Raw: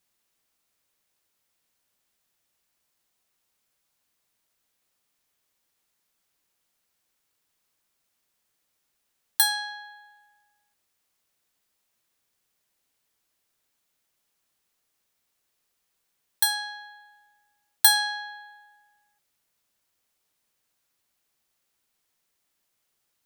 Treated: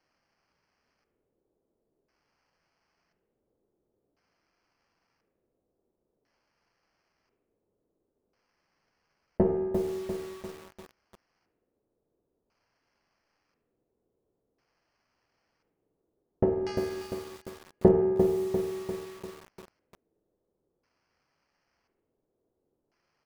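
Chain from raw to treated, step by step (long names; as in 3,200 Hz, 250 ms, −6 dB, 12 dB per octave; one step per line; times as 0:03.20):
lower of the sound and its delayed copy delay 0.86 ms
elliptic high-pass filter 310 Hz, stop band 40 dB
sample-rate reduction 3,700 Hz, jitter 0%
auto-filter low-pass square 0.48 Hz 420–4,900 Hz
single-tap delay 73 ms −16.5 dB
spring reverb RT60 1.1 s, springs 45/51 ms, chirp 80 ms, DRR 7 dB
feedback echo at a low word length 347 ms, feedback 55%, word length 7 bits, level −6.5 dB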